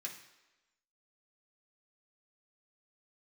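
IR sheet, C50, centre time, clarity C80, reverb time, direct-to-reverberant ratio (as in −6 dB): 8.0 dB, 24 ms, 10.5 dB, 1.1 s, −2.0 dB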